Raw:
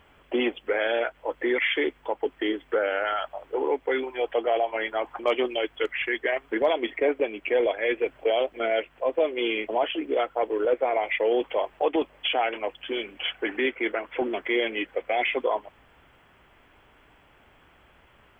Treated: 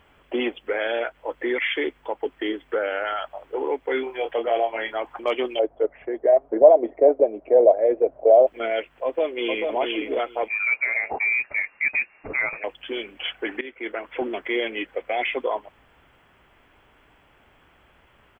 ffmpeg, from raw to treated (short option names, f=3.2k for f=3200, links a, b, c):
-filter_complex "[0:a]asettb=1/sr,asplit=3[a][b][c];[a]atrim=end=3.854[d];[b]atrim=start=3.85:end=4.94,asetpts=PTS-STARTPTS,afade=t=in:d=0.004:c=qsin,afade=t=out:st=1.086:d=0.004:c=qsin,asplit=2[e][f];[f]adelay=26,volume=-6dB[g];[e][g]amix=inputs=2:normalize=0,atrim=end_sample=48069[h];[c]atrim=start=4.936[i];[d][h]acrossfade=d=0.004:c1=hsin:c2=qsin[j];[j][i]acrossfade=d=0.004:c1=qsin:c2=hsin,asettb=1/sr,asplit=3[k][l][m];[k]atrim=end=5.594[n];[l]atrim=start=5.59:end=8.47,asetpts=PTS-STARTPTS,afade=t=in:d=0.004:c=qsin,afade=t=out:st=2.876:d=0.004:c=qsin,lowpass=f=640:t=q:w=4.5[o];[m]atrim=start=8.466[p];[n][o]acrossfade=d=0.004:c1=hsin:c2=qsin[q];[q][p]acrossfade=d=0.004:c1=qsin:c2=hsin,asplit=2[r][s];[s]afade=t=in:st=9.04:d=0.01,afade=t=out:st=9.75:d=0.01,aecho=0:1:440|880|1320:0.630957|0.0946436|0.0141965[t];[r][t]amix=inputs=2:normalize=0,asettb=1/sr,asplit=3[u][v][w];[u]atrim=end=10.484[x];[v]atrim=start=10.48:end=12.64,asetpts=PTS-STARTPTS,afade=t=in:d=0.004:c=qsin,afade=t=out:st=2.156:d=0.004:c=qsin,lowpass=f=2.4k:t=q:w=0.5098,lowpass=f=2.4k:t=q:w=0.6013,lowpass=f=2.4k:t=q:w=0.9,lowpass=f=2.4k:t=q:w=2.563,afreqshift=-2800[y];[w]atrim=start=12.636[z];[x][y]acrossfade=d=0.004:c1=hsin:c2=qsin[aa];[aa][z]acrossfade=d=0.004:c1=qsin:c2=hsin,asplit=2[ab][ac];[ab]atrim=end=13.61,asetpts=PTS-STARTPTS,afade=t=out:st=13.606:d=0.004:c=hsin:silence=0.133352[ad];[ac]atrim=start=13.61,asetpts=PTS-STARTPTS,afade=t=in:d=0.44:silence=0.133352[ae];[ad][ae]concat=n=2:v=0:a=1"